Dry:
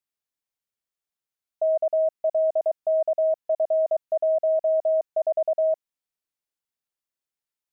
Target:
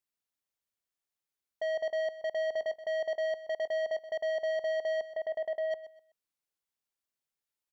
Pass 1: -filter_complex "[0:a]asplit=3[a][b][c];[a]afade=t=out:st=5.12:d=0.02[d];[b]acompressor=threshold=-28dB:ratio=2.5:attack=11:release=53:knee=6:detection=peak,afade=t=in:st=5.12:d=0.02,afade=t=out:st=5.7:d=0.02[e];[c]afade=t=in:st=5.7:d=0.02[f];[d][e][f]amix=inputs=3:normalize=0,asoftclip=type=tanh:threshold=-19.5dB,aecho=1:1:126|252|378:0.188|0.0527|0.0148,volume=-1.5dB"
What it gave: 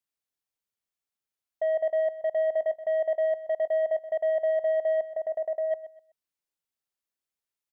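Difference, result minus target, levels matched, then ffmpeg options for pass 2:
soft clip: distortion -10 dB
-filter_complex "[0:a]asplit=3[a][b][c];[a]afade=t=out:st=5.12:d=0.02[d];[b]acompressor=threshold=-28dB:ratio=2.5:attack=11:release=53:knee=6:detection=peak,afade=t=in:st=5.12:d=0.02,afade=t=out:st=5.7:d=0.02[e];[c]afade=t=in:st=5.7:d=0.02[f];[d][e][f]amix=inputs=3:normalize=0,asoftclip=type=tanh:threshold=-28.5dB,aecho=1:1:126|252|378:0.188|0.0527|0.0148,volume=-1.5dB"

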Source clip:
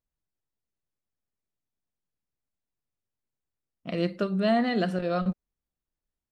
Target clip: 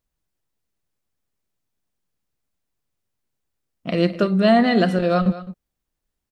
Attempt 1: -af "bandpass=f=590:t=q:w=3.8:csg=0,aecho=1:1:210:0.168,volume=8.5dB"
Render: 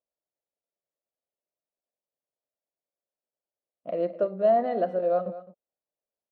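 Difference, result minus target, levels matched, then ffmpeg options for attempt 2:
500 Hz band +4.0 dB
-af "aecho=1:1:210:0.168,volume=8.5dB"

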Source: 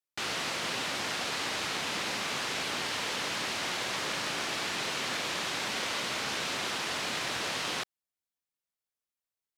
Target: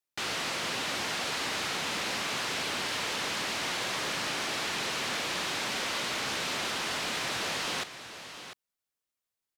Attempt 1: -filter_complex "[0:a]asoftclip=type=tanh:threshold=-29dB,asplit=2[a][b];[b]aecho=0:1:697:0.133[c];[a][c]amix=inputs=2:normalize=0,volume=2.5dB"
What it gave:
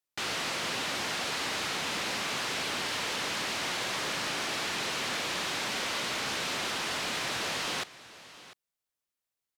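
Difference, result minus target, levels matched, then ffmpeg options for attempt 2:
echo-to-direct -6 dB
-filter_complex "[0:a]asoftclip=type=tanh:threshold=-29dB,asplit=2[a][b];[b]aecho=0:1:697:0.266[c];[a][c]amix=inputs=2:normalize=0,volume=2.5dB"

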